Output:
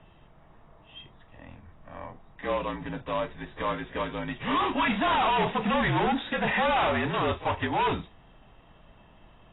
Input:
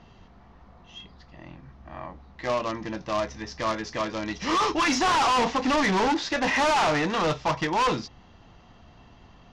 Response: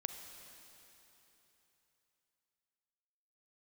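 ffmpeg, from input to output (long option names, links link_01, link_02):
-af "afreqshift=-53,volume=-2.5dB" -ar 16000 -c:a aac -b:a 16k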